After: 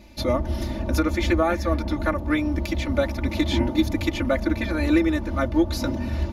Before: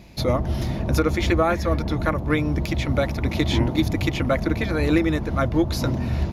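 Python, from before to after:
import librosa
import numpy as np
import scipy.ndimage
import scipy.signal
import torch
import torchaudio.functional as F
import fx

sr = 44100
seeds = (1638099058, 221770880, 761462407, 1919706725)

y = x + 0.89 * np.pad(x, (int(3.4 * sr / 1000.0), 0))[:len(x)]
y = y * librosa.db_to_amplitude(-4.0)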